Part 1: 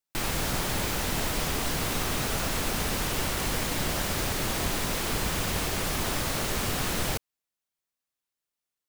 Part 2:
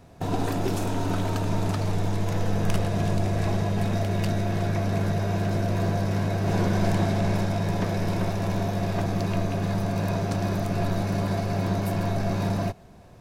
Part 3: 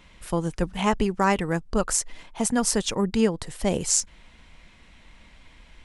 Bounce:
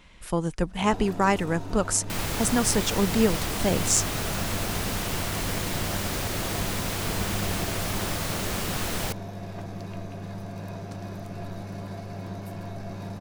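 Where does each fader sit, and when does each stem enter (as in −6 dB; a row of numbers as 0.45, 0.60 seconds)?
−1.0, −10.5, −0.5 decibels; 1.95, 0.60, 0.00 seconds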